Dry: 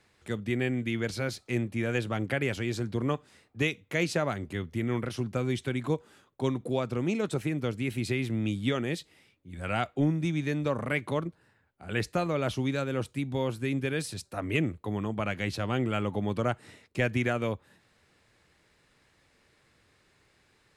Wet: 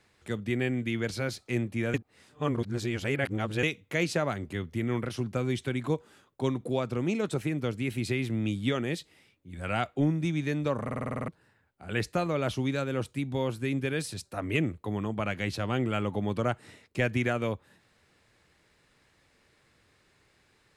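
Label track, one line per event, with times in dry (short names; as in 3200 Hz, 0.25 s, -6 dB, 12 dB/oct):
1.940000	3.630000	reverse
10.830000	10.830000	stutter in place 0.05 s, 9 plays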